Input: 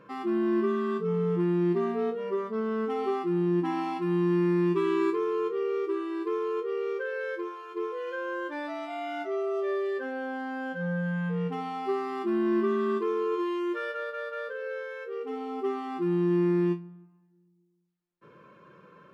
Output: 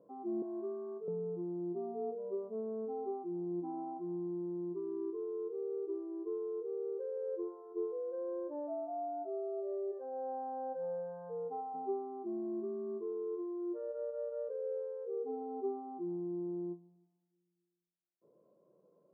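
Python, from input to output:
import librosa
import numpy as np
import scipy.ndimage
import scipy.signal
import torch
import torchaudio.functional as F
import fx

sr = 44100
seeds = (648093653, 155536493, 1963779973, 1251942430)

y = fx.bandpass_edges(x, sr, low_hz=500.0, high_hz=2200.0, at=(0.42, 1.08))
y = fx.highpass(y, sr, hz=570.0, slope=12, at=(9.91, 11.73), fade=0.02)
y = scipy.signal.sosfilt(scipy.signal.ellip(4, 1.0, 70, 700.0, 'lowpass', fs=sr, output='sos'), y)
y = np.diff(y, prepend=0.0)
y = fx.rider(y, sr, range_db=10, speed_s=0.5)
y = y * librosa.db_to_amplitude(16.5)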